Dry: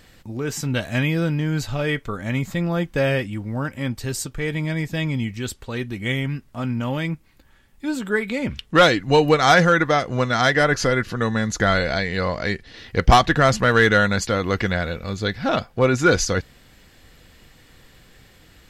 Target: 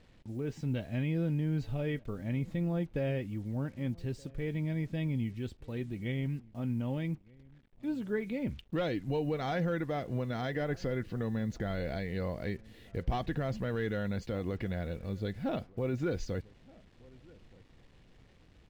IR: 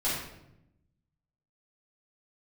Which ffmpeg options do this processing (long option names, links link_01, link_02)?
-filter_complex "[0:a]lowpass=2300,equalizer=frequency=1300:width_type=o:width=1.5:gain=-13,alimiter=limit=-15.5dB:level=0:latency=1:release=88,acrusher=bits=8:mix=0:aa=0.5,asplit=2[link_01][link_02];[link_02]adelay=1224,volume=-24dB,highshelf=frequency=4000:gain=-27.6[link_03];[link_01][link_03]amix=inputs=2:normalize=0,volume=-8dB"